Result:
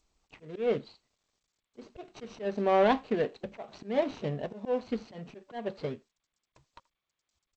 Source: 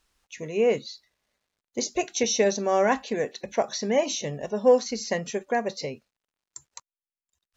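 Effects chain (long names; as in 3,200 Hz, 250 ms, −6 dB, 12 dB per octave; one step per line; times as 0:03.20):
running median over 25 samples
volume swells 219 ms
low-pass filter 4,400 Hz 24 dB per octave
notch filter 530 Hz, Q 12
far-end echo of a speakerphone 80 ms, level −24 dB
G.722 64 kbit/s 16,000 Hz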